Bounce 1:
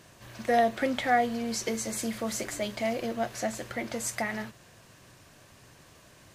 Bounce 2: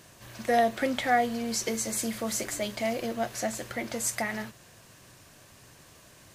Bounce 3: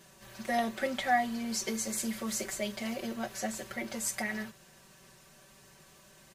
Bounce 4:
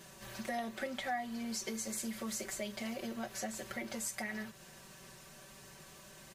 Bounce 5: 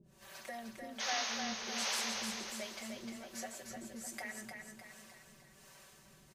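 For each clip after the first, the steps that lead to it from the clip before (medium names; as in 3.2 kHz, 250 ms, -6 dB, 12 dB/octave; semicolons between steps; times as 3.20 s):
treble shelf 6.1 kHz +6 dB
comb 5.2 ms, depth 99%; trim -6.5 dB
compression 2.5:1, threshold -44 dBFS, peak gain reduction 14.5 dB; trim +3 dB
painted sound noise, 0.99–2.41 s, 420–6700 Hz -34 dBFS; harmonic tremolo 1.3 Hz, depth 100%, crossover 410 Hz; feedback delay 304 ms, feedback 49%, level -5 dB; trim -2.5 dB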